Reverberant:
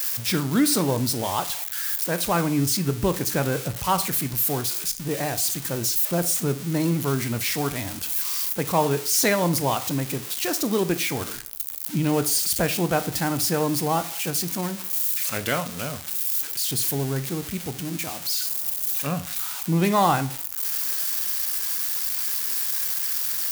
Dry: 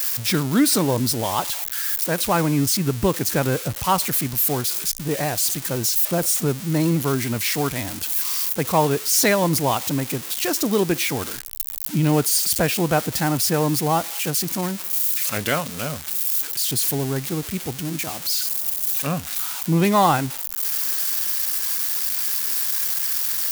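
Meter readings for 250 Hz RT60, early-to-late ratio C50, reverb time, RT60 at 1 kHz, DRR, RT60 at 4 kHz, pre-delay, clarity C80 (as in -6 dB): 0.40 s, 15.5 dB, 0.40 s, 0.40 s, 11.0 dB, 0.35 s, 16 ms, 20.5 dB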